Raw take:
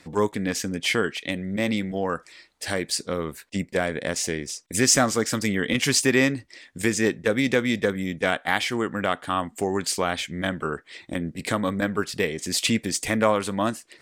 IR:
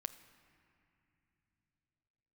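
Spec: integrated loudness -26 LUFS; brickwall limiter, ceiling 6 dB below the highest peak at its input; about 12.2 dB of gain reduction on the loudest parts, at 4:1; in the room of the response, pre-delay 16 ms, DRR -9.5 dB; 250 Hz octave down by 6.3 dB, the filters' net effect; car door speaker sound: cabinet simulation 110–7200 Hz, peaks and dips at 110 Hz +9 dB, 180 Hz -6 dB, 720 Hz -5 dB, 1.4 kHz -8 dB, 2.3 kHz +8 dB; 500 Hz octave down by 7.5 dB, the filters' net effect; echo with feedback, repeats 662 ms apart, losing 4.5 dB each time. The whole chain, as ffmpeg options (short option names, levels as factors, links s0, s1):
-filter_complex "[0:a]equalizer=f=250:t=o:g=-4,equalizer=f=500:t=o:g=-7,acompressor=threshold=0.0355:ratio=4,alimiter=limit=0.0944:level=0:latency=1,aecho=1:1:662|1324|1986|2648|3310|3972|4634|5296|5958:0.596|0.357|0.214|0.129|0.0772|0.0463|0.0278|0.0167|0.01,asplit=2[s0][s1];[1:a]atrim=start_sample=2205,adelay=16[s2];[s1][s2]afir=irnorm=-1:irlink=0,volume=3.98[s3];[s0][s3]amix=inputs=2:normalize=0,highpass=110,equalizer=f=110:t=q:w=4:g=9,equalizer=f=180:t=q:w=4:g=-6,equalizer=f=720:t=q:w=4:g=-5,equalizer=f=1400:t=q:w=4:g=-8,equalizer=f=2300:t=q:w=4:g=8,lowpass=f=7200:w=0.5412,lowpass=f=7200:w=1.3066,volume=0.596"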